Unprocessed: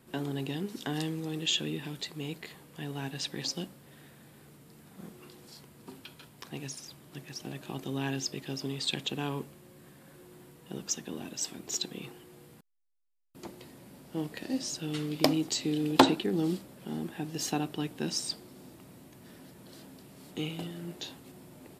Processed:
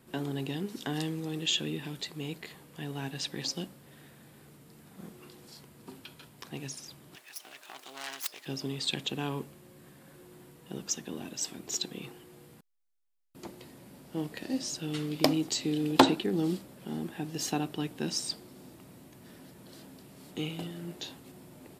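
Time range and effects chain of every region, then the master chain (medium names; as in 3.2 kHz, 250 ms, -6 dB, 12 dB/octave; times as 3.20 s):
7.15–8.46 s: self-modulated delay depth 0.44 ms + high-pass 880 Hz
whole clip: none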